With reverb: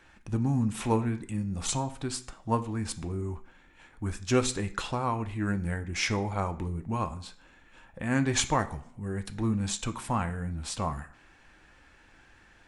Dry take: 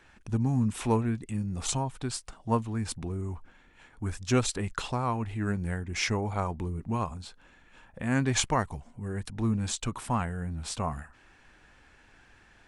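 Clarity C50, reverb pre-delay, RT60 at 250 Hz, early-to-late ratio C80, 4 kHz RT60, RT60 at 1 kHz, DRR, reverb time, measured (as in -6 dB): 15.5 dB, 3 ms, 0.55 s, 19.0 dB, 0.45 s, 0.50 s, 8.0 dB, 0.55 s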